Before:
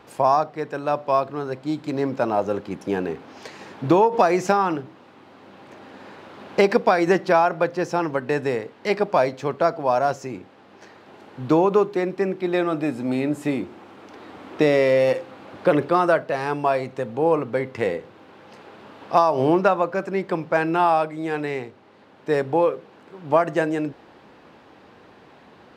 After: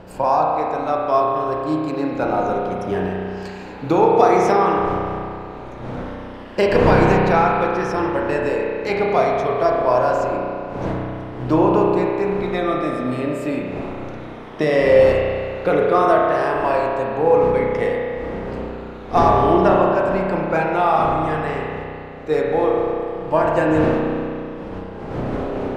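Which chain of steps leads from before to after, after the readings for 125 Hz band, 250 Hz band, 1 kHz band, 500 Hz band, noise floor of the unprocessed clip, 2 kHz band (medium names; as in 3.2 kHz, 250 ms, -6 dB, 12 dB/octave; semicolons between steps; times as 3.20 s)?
+6.5 dB, +3.5 dB, +4.0 dB, +4.0 dB, -50 dBFS, +3.0 dB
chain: drifting ripple filter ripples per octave 1.3, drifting -0.6 Hz, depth 7 dB; wind noise 500 Hz -31 dBFS; spring tank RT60 2.5 s, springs 32 ms, chirp 40 ms, DRR -2 dB; trim -1.5 dB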